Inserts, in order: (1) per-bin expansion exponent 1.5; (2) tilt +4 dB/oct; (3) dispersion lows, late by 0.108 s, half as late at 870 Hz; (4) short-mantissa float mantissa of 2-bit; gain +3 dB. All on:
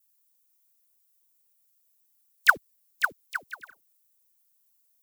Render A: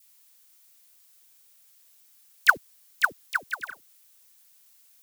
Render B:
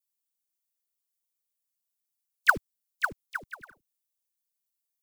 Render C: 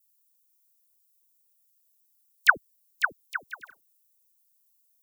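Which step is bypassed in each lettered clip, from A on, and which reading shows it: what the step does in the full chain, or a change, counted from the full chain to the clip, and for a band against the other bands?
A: 1, momentary loudness spread change -6 LU; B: 2, 500 Hz band +7.0 dB; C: 4, distortion -20 dB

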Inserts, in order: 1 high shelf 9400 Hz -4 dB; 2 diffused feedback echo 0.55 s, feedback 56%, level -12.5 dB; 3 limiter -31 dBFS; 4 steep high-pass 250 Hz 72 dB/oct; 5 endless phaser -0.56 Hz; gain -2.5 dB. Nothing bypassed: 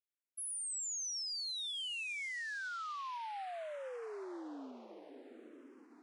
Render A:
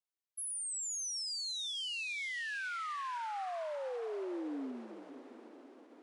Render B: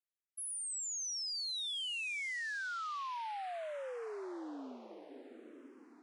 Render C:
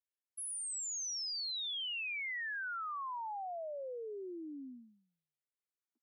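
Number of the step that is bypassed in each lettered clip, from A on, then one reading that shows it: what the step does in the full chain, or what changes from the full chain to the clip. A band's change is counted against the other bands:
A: 5, 250 Hz band +5.0 dB; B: 3, 8 kHz band -1.5 dB; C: 2, momentary loudness spread change -8 LU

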